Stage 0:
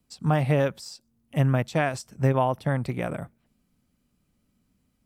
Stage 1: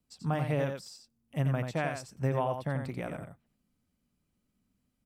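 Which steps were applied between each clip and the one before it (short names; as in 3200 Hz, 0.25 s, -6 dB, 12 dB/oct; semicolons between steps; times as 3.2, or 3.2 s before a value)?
echo 88 ms -6.5 dB; gain -8 dB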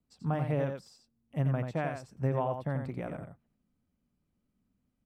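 high shelf 2300 Hz -11 dB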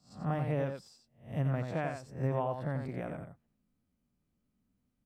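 spectral swells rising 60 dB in 0.38 s; gain -2.5 dB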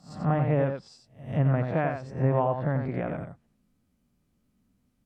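pre-echo 0.181 s -23 dB; treble ducked by the level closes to 2300 Hz, closed at -32.5 dBFS; gain +8 dB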